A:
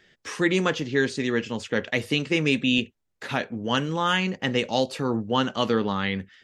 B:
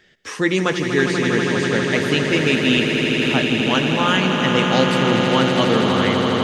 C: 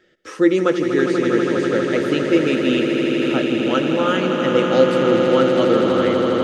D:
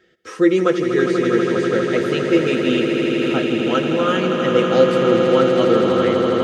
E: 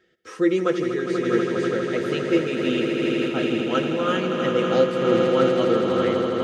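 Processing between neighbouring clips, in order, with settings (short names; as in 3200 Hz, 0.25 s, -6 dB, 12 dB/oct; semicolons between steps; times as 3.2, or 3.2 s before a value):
swelling echo 81 ms, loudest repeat 8, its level -9 dB; gain +3.5 dB
small resonant body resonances 340/510/1300 Hz, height 14 dB, ringing for 35 ms; gain -7.5 dB
notch comb 290 Hz; gain +1.5 dB
noise-modulated level, depth 60%; gain -2.5 dB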